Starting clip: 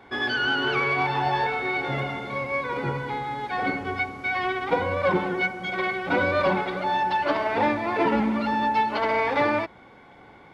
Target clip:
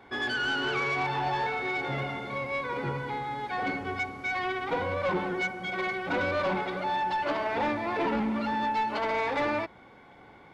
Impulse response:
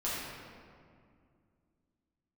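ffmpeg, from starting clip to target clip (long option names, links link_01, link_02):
-af "asoftclip=type=tanh:threshold=-19.5dB,volume=-3dB"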